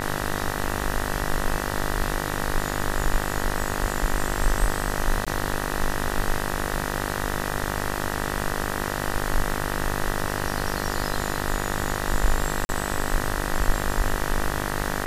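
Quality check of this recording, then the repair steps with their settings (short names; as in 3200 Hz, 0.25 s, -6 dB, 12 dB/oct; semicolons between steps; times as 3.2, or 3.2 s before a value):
buzz 50 Hz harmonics 39 -29 dBFS
5.25–5.27 gap 16 ms
12.65–12.69 gap 41 ms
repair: de-hum 50 Hz, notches 39; interpolate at 5.25, 16 ms; interpolate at 12.65, 41 ms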